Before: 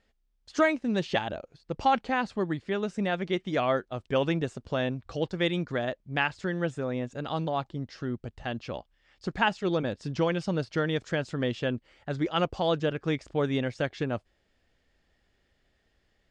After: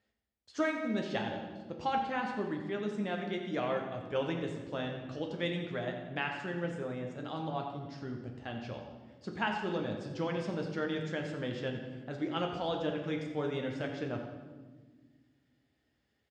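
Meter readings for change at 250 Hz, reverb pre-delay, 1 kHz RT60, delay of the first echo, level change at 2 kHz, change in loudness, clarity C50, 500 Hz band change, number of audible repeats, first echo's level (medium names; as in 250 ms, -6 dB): -5.5 dB, 3 ms, 1.2 s, 89 ms, -6.5 dB, -6.5 dB, 4.5 dB, -6.5 dB, 1, -11.0 dB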